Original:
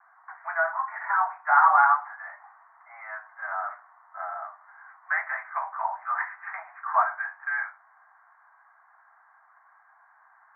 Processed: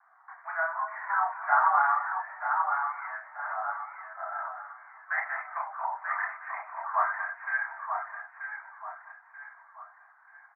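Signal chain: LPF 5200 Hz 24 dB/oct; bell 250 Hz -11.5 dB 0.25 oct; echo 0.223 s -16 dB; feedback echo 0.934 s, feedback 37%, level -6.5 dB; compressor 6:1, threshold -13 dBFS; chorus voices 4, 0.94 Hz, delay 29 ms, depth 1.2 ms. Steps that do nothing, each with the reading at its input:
LPF 5200 Hz: input band ends at 2400 Hz; bell 250 Hz: input band starts at 570 Hz

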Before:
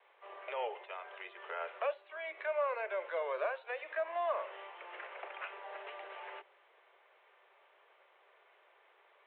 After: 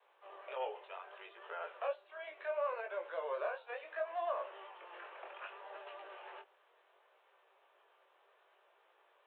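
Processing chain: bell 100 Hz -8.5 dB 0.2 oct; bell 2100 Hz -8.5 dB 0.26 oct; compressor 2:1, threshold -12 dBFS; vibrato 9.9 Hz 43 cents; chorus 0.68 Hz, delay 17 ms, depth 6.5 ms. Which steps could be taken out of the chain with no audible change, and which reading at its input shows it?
bell 100 Hz: input band starts at 320 Hz; compressor, threshold -12 dBFS: input peak -24.5 dBFS

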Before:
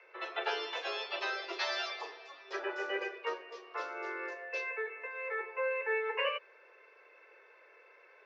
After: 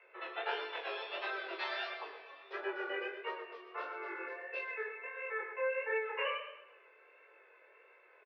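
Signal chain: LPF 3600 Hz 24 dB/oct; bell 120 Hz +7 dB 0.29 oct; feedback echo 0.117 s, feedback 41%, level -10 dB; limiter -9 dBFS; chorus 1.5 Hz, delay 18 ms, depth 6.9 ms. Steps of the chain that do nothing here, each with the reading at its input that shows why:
bell 120 Hz: input band starts at 290 Hz; limiter -9 dBFS: input peak -21.0 dBFS

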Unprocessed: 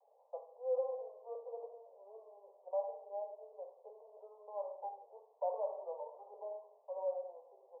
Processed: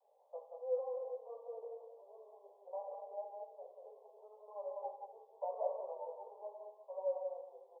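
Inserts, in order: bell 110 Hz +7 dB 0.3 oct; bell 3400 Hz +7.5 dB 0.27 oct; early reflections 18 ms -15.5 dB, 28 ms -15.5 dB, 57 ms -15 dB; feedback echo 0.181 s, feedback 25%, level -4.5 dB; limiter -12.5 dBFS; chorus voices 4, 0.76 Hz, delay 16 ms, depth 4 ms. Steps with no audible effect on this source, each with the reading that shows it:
bell 110 Hz: input band starts at 380 Hz; bell 3400 Hz: input band ends at 1100 Hz; limiter -12.5 dBFS: input peak -23.5 dBFS

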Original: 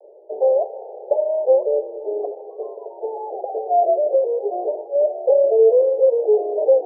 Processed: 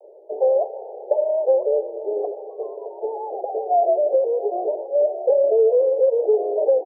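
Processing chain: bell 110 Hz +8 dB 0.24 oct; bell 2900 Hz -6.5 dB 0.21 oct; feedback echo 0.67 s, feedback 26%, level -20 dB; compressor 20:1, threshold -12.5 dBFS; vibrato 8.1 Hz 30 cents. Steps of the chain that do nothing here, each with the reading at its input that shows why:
bell 110 Hz: input band starts at 300 Hz; bell 2900 Hz: input band ends at 910 Hz

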